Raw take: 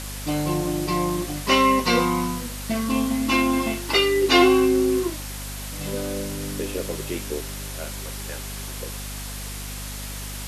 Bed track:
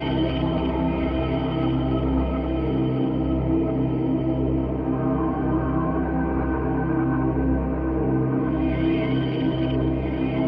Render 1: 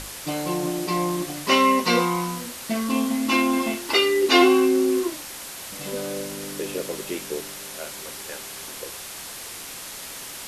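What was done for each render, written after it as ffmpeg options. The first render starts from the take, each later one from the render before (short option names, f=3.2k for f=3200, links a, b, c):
-af "bandreject=f=50:t=h:w=6,bandreject=f=100:t=h:w=6,bandreject=f=150:t=h:w=6,bandreject=f=200:t=h:w=6,bandreject=f=250:t=h:w=6,bandreject=f=300:t=h:w=6"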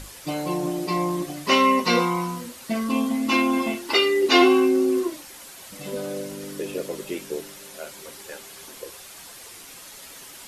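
-af "afftdn=nr=8:nf=-37"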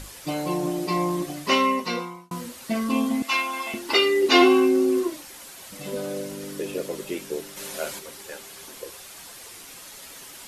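-filter_complex "[0:a]asettb=1/sr,asplit=3[a][b][c];[a]atrim=end=3.224[d];[b]atrim=start=3.22:end=3.74,asetpts=PTS-STARTPTS,afade=t=in:d=0.004:c=qsin,afade=t=out:st=0.516:d=0.004:c=qsin,highpass=870[e];[c]atrim=start=3.736[f];[d][e]acrossfade=d=0.004:c1=hsin:c2=qsin[g];[g][f]acrossfade=d=0.004:c1=qsin:c2=hsin,asplit=3[h][i][j];[h]afade=t=out:st=7.56:d=0.02[k];[i]acontrast=65,afade=t=in:st=7.56:d=0.02,afade=t=out:st=7.98:d=0.02[l];[j]afade=t=in:st=7.98:d=0.02[m];[k][l][m]amix=inputs=3:normalize=0,asplit=2[n][o];[n]atrim=end=2.31,asetpts=PTS-STARTPTS,afade=t=out:st=1.35:d=0.96[p];[o]atrim=start=2.31,asetpts=PTS-STARTPTS,afade=t=in:d=0.004:c=hsin[q];[p][q]concat=n=2:v=0:a=1"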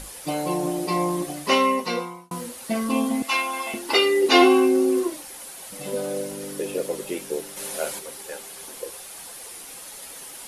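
-af "equalizer=f=100:t=o:w=0.33:g=-10,equalizer=f=500:t=o:w=0.33:g=5,equalizer=f=800:t=o:w=0.33:g=5,equalizer=f=10k:t=o:w=0.33:g=9"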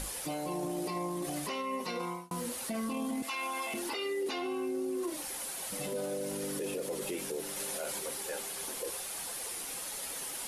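-af "acompressor=threshold=-27dB:ratio=6,alimiter=level_in=4dB:limit=-24dB:level=0:latency=1:release=14,volume=-4dB"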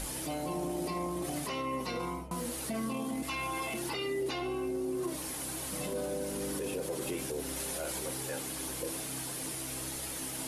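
-filter_complex "[1:a]volume=-22.5dB[a];[0:a][a]amix=inputs=2:normalize=0"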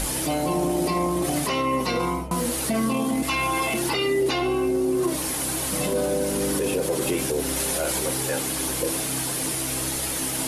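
-af "volume=11.5dB"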